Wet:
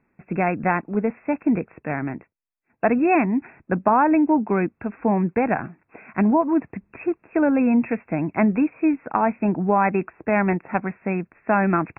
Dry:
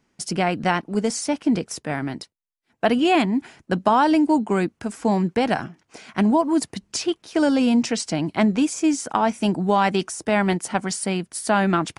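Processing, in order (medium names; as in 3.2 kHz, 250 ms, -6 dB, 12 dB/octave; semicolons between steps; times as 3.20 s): brick-wall FIR low-pass 2.7 kHz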